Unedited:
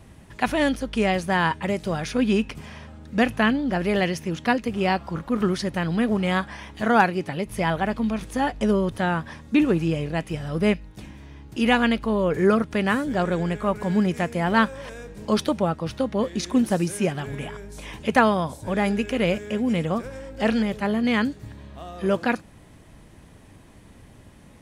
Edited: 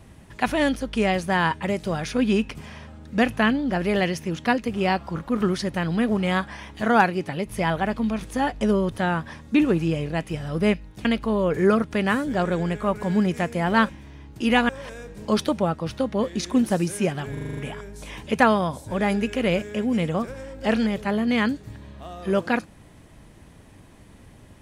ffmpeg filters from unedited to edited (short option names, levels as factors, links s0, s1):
-filter_complex "[0:a]asplit=10[s0][s1][s2][s3][s4][s5][s6][s7][s8][s9];[s0]atrim=end=11.052[s10];[s1]atrim=start=11.848:end=14.692[s11];[s2]atrim=start=11.048:end=11.852[s12];[s3]atrim=start=14.688:end=17.372[s13];[s4]atrim=start=17.328:end=17.372[s14];[s5]atrim=start=17.328:end=17.372[s15];[s6]atrim=start=17.328:end=17.372[s16];[s7]atrim=start=17.328:end=17.372[s17];[s8]atrim=start=17.328:end=17.372[s18];[s9]atrim=start=17.328[s19];[s10][s11]acrossfade=d=0.004:c1=hsin:c2=hsin[s20];[s20][s12]acrossfade=d=0.004:c1=hsin:c2=hsin[s21];[s21][s13]acrossfade=d=0.004:c1=hsin:c2=hsin[s22];[s22][s14]acrossfade=d=0.004:c1=hsin:c2=hsin[s23];[s23][s15]acrossfade=d=0.004:c1=hsin:c2=hsin[s24];[s24][s16]acrossfade=d=0.004:c1=hsin:c2=hsin[s25];[s25][s17]acrossfade=d=0.004:c1=hsin:c2=hsin[s26];[s26][s18]acrossfade=d=0.004:c1=hsin:c2=hsin[s27];[s27][s19]acrossfade=d=0.004:c1=hsin:c2=hsin"